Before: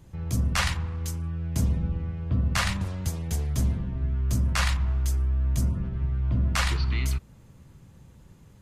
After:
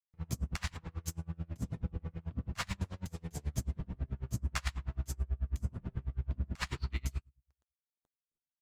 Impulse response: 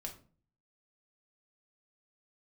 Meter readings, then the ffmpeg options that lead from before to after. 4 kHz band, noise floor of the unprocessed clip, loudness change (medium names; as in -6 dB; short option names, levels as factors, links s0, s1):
-13.0 dB, -53 dBFS, -12.0 dB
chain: -filter_complex "[0:a]aeval=exprs='sgn(val(0))*max(abs(val(0))-0.00841,0)':c=same,flanger=delay=6.1:depth=8.2:regen=-53:speed=1.2:shape=triangular,acompressor=threshold=0.0316:ratio=6,asplit=2[s0][s1];[s1]lowpass=f=7800:t=q:w=8.5[s2];[1:a]atrim=start_sample=2205[s3];[s2][s3]afir=irnorm=-1:irlink=0,volume=0.141[s4];[s0][s4]amix=inputs=2:normalize=0,aeval=exprs='val(0)*pow(10,-32*(0.5-0.5*cos(2*PI*9.2*n/s))/20)':c=same,volume=1.33"